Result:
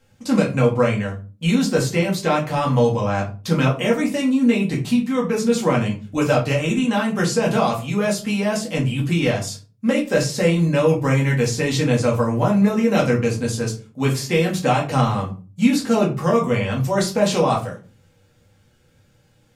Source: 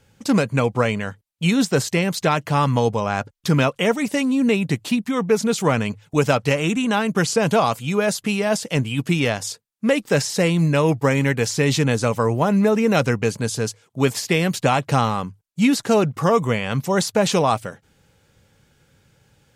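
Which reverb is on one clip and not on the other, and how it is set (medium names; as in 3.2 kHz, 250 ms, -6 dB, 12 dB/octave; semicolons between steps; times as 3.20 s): simulated room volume 160 m³, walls furnished, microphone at 2.1 m; trim -5.5 dB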